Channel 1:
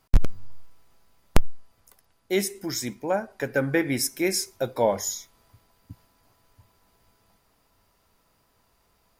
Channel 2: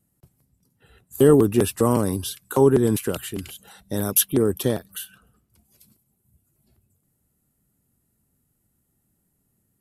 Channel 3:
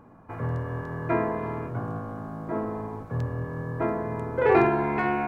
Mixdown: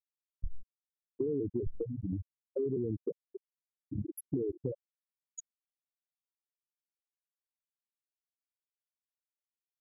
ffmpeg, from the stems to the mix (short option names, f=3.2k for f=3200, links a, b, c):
-filter_complex "[0:a]acrossover=split=410[a][b];[b]acompressor=threshold=-30dB:ratio=6[c];[a][c]amix=inputs=2:normalize=0,crystalizer=i=4:c=0,adelay=300,volume=-11dB[d];[1:a]volume=-1dB[e];[2:a]alimiter=limit=-18dB:level=0:latency=1:release=389,volume=-13dB[f];[e][f]amix=inputs=2:normalize=0,equalizer=f=220:t=o:w=0.21:g=-4.5,alimiter=limit=-15dB:level=0:latency=1:release=13,volume=0dB[g];[d][g]amix=inputs=2:normalize=0,afftfilt=real='re*gte(hypot(re,im),0.316)':imag='im*gte(hypot(re,im),0.316)':win_size=1024:overlap=0.75,acompressor=threshold=-31dB:ratio=6"